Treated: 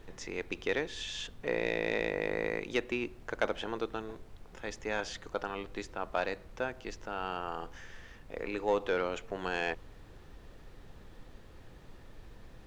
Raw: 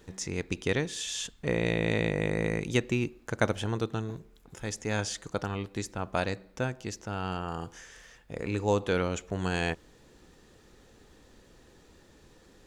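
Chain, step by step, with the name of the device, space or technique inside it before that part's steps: aircraft cabin announcement (BPF 370–3600 Hz; soft clip -17.5 dBFS, distortion -18 dB; brown noise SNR 12 dB)

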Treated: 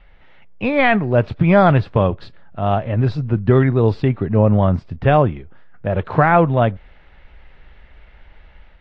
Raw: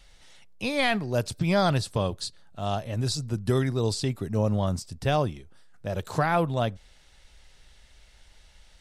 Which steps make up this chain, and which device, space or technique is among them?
action camera in a waterproof case (LPF 2400 Hz 24 dB/oct; AGC gain up to 4 dB; gain +7 dB; AAC 48 kbps 24000 Hz)

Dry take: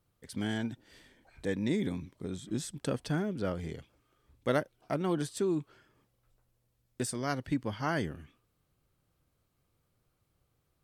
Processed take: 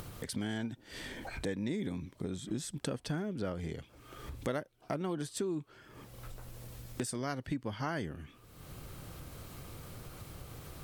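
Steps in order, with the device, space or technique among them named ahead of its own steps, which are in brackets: upward and downward compression (upward compressor, threshold -44 dBFS; compressor 3:1, threshold -51 dBFS, peak gain reduction 20 dB); gain +12 dB

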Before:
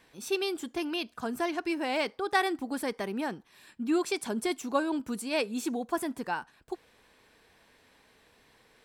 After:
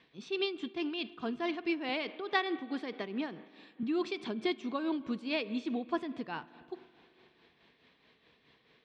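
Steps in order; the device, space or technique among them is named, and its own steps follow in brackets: 1.89–3.83 HPF 190 Hz; combo amplifier with spring reverb and tremolo (spring tank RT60 2.7 s, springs 41/49 ms, chirp 35 ms, DRR 16 dB; tremolo 4.7 Hz, depth 52%; speaker cabinet 80–4200 Hz, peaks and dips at 100 Hz -8 dB, 150 Hz +4 dB, 560 Hz -5 dB, 860 Hz -7 dB, 1500 Hz -6 dB, 3400 Hz +3 dB)

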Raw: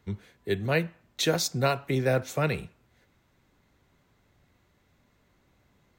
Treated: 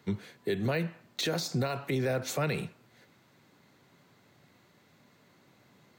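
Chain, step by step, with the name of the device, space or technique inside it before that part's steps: broadcast voice chain (HPF 120 Hz 24 dB/oct; de-esser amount 75%; compressor, threshold -27 dBFS, peak gain reduction 8 dB; bell 4400 Hz +4.5 dB 0.25 oct; limiter -27 dBFS, peak gain reduction 8.5 dB); gain +5.5 dB

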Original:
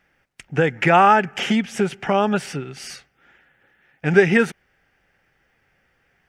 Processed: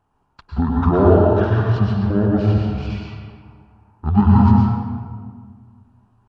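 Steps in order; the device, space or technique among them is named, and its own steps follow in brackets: monster voice (pitch shift -11.5 st; low shelf 240 Hz +8.5 dB; reverb RT60 1.8 s, pre-delay 98 ms, DRR -2.5 dB); gain -6 dB

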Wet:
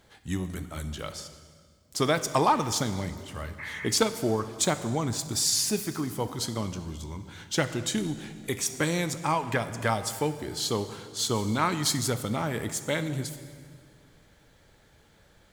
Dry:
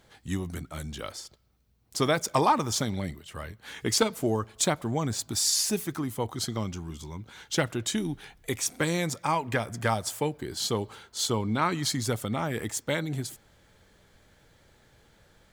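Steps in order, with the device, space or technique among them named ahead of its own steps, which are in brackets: 3.62–3.84 spectral repair 790–2700 Hz after; saturated reverb return (on a send at -8 dB: reverb RT60 1.8 s, pre-delay 3 ms + soft clip -25 dBFS, distortion -13 dB); 11.35–12.1 on the sum: high shelf 5800 Hz +6 dB

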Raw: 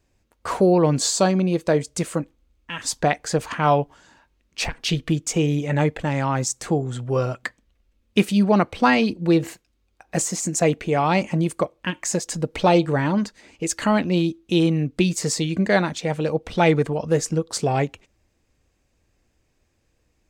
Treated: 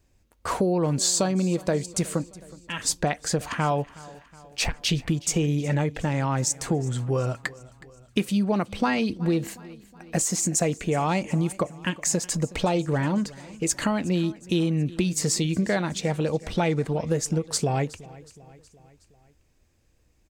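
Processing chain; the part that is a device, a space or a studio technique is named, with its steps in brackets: ASMR close-microphone chain (low shelf 180 Hz +5.5 dB; compressor 5:1, threshold -19 dBFS, peak gain reduction 9 dB; high shelf 6700 Hz +6 dB); feedback echo 0.368 s, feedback 55%, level -20.5 dB; gain -1.5 dB

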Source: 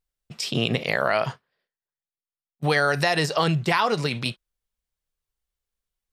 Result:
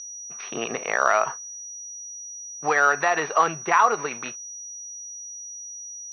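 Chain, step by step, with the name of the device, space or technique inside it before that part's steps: toy sound module (decimation joined by straight lines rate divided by 4×; pulse-width modulation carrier 5800 Hz; speaker cabinet 530–4400 Hz, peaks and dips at 560 Hz -6 dB, 1200 Hz +5 dB, 2100 Hz -4 dB, 3200 Hz -8 dB); gain +4.5 dB

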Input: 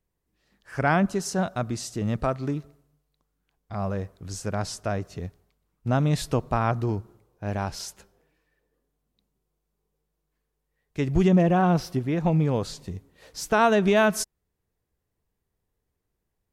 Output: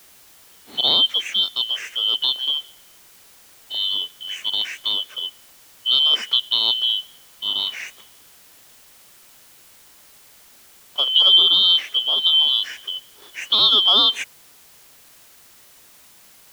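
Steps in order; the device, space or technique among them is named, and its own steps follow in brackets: split-band scrambled radio (four-band scrambler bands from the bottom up 2413; BPF 370–3400 Hz; white noise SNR 27 dB); gain +7.5 dB

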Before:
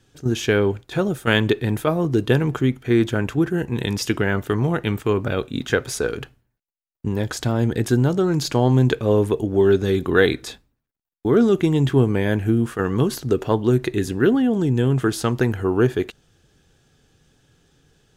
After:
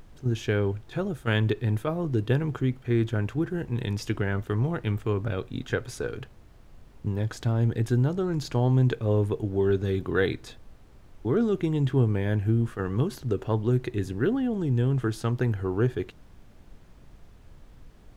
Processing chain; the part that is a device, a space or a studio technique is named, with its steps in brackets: car interior (bell 110 Hz +8 dB 0.51 oct; high shelf 4600 Hz -6.5 dB; brown noise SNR 21 dB); gain -8.5 dB

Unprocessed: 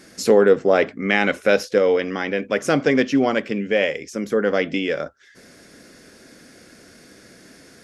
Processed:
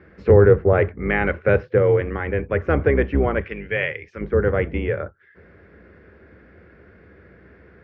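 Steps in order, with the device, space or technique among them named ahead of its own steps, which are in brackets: 3.41–4.21 tilt shelf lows -10 dB, about 1200 Hz; sub-octave bass pedal (octaver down 2 oct, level +2 dB; speaker cabinet 72–2100 Hz, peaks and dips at 90 Hz +7 dB, 260 Hz -8 dB, 410 Hz +4 dB, 680 Hz -4 dB); gain -1 dB

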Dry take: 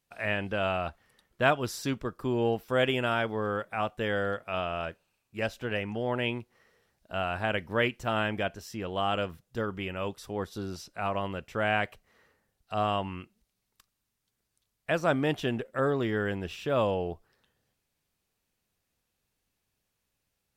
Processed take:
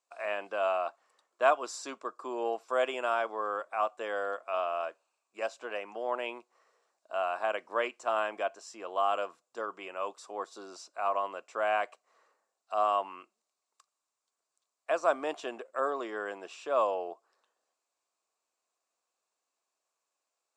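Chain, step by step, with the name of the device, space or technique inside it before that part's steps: phone speaker on a table (speaker cabinet 360–8600 Hz, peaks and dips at 420 Hz -3 dB, 670 Hz +6 dB, 1100 Hz +10 dB, 1900 Hz -6 dB, 3200 Hz -6 dB, 7400 Hz +8 dB); gain -4 dB

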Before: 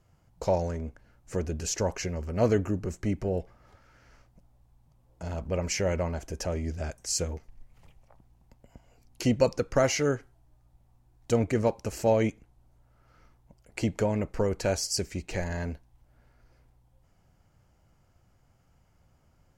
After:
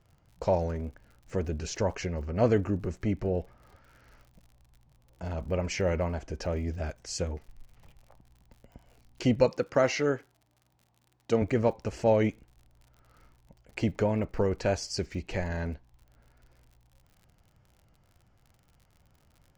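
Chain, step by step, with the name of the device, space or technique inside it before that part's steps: 9.46–11.42 Bessel high-pass 170 Hz, order 2; lo-fi chain (LPF 4400 Hz 12 dB/oct; wow and flutter; crackle 65/s -48 dBFS)

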